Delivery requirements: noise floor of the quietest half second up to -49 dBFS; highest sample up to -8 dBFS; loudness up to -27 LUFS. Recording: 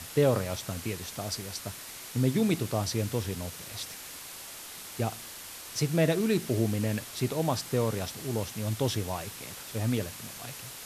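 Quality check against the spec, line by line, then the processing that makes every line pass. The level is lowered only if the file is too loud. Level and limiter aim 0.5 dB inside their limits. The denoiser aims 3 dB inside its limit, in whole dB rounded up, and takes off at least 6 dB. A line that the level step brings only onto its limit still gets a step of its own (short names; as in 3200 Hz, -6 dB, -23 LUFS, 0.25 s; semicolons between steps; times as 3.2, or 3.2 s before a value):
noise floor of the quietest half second -44 dBFS: fail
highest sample -12.0 dBFS: OK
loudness -31.5 LUFS: OK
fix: denoiser 8 dB, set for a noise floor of -44 dBFS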